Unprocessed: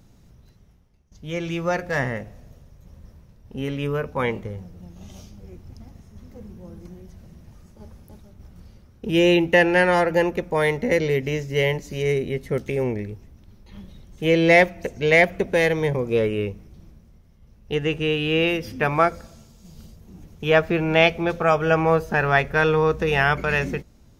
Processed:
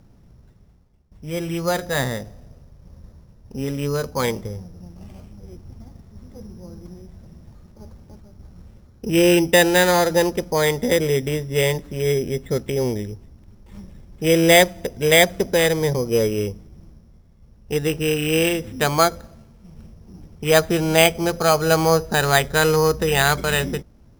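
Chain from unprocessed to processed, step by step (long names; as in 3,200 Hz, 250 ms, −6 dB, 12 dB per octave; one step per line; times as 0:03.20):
adaptive Wiener filter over 9 samples
decimation without filtering 8×
level +2 dB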